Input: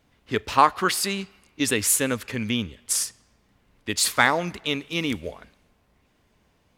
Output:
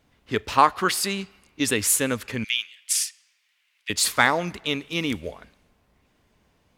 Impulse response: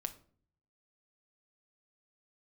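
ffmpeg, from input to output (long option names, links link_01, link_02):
-filter_complex "[0:a]asettb=1/sr,asplit=3[link_01][link_02][link_03];[link_01]atrim=end=2.444[link_04];[link_02]atrim=start=2.44:end=3.9,asetpts=PTS-STARTPTS,afade=type=in:duration=0.004:curve=qsin,afade=type=out:start_time=1.456:duration=0.004:curve=qsin,highpass=frequency=2400:width_type=q:width=2[link_05];[link_03]atrim=start=3.896[link_06];[link_04][link_05]acrossfade=duration=0.004:curve1=hsin:curve2=qsin[link_07];[link_07][link_06]acrossfade=duration=0.004:curve1=qsin:curve2=hsin"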